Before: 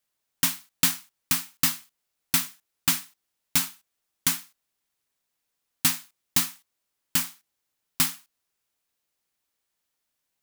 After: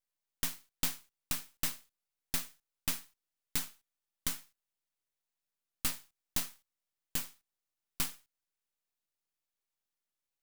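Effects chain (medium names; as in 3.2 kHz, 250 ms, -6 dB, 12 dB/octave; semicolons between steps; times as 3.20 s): half-wave rectifier; trim -7.5 dB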